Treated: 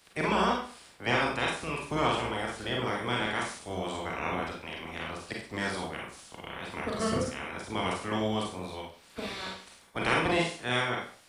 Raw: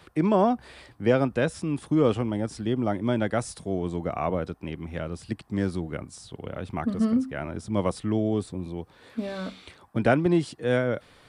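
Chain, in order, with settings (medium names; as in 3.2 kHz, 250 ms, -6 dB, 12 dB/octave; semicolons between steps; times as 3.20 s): spectral peaks clipped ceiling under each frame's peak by 25 dB; Schroeder reverb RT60 0.44 s, combs from 33 ms, DRR -1.5 dB; trim -8.5 dB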